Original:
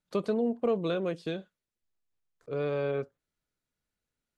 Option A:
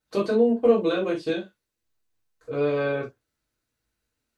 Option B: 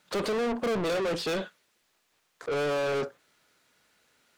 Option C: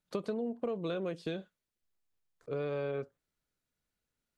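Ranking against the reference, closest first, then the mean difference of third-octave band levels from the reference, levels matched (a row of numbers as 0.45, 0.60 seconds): C, A, B; 1.5, 3.0, 10.5 decibels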